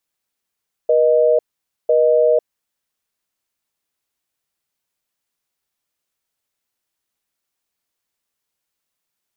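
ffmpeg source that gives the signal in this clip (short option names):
-f lavfi -i "aevalsrc='0.211*(sin(2*PI*480*t)+sin(2*PI*620*t))*clip(min(mod(t,1),0.5-mod(t,1))/0.005,0,1)':d=1.81:s=44100"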